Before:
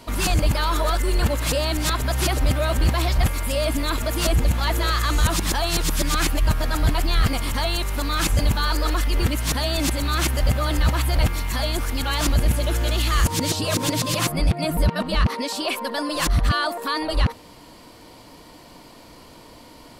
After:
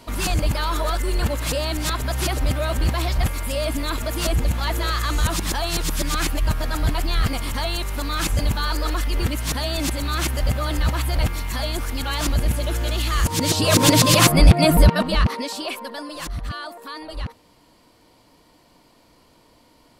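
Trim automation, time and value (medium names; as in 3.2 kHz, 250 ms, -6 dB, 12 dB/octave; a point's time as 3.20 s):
13.21 s -1.5 dB
13.86 s +8.5 dB
14.72 s +8.5 dB
15.17 s +1.5 dB
16.31 s -10 dB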